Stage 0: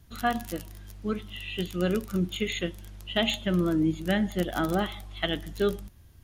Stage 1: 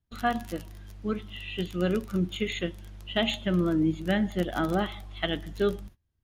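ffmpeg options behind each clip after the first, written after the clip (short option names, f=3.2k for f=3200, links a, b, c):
-af "agate=range=-24dB:threshold=-46dB:ratio=16:detection=peak,highshelf=f=6.3k:g=-9"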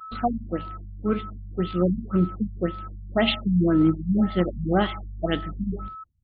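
-af "asoftclip=type=hard:threshold=-18dB,aeval=exprs='val(0)+0.00794*sin(2*PI*1300*n/s)':c=same,afftfilt=real='re*lt(b*sr/1024,210*pow(5000/210,0.5+0.5*sin(2*PI*1.9*pts/sr)))':imag='im*lt(b*sr/1024,210*pow(5000/210,0.5+0.5*sin(2*PI*1.9*pts/sr)))':win_size=1024:overlap=0.75,volume=6dB"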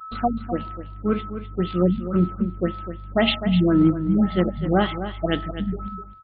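-af "aecho=1:1:253:0.282,volume=2dB"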